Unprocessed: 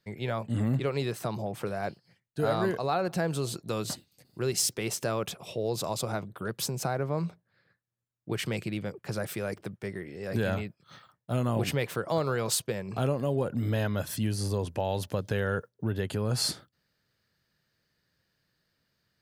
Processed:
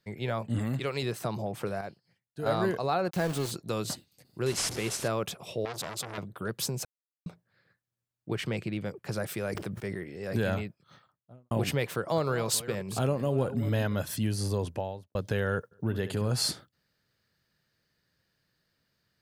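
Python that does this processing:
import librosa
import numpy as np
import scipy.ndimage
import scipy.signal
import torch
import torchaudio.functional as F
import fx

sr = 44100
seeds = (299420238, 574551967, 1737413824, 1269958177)

y = fx.tilt_shelf(x, sr, db=-4.5, hz=1100.0, at=(0.59, 1.03))
y = fx.sample_gate(y, sr, floor_db=-34.0, at=(3.09, 3.5), fade=0.02)
y = fx.delta_mod(y, sr, bps=64000, step_db=-32.0, at=(4.46, 5.08))
y = fx.transformer_sat(y, sr, knee_hz=2800.0, at=(5.65, 6.18))
y = fx.high_shelf(y, sr, hz=5700.0, db=-10.0, at=(8.33, 8.81))
y = fx.sustainer(y, sr, db_per_s=47.0, at=(9.45, 10.04))
y = fx.studio_fade_out(y, sr, start_s=10.58, length_s=0.93)
y = fx.reverse_delay(y, sr, ms=237, wet_db=-13, at=(12.04, 13.99))
y = fx.studio_fade_out(y, sr, start_s=14.63, length_s=0.52)
y = fx.echo_feedback(y, sr, ms=68, feedback_pct=28, wet_db=-11.5, at=(15.71, 16.28), fade=0.02)
y = fx.edit(y, sr, fx.clip_gain(start_s=1.81, length_s=0.65, db=-7.0),
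    fx.silence(start_s=6.85, length_s=0.41), tone=tone)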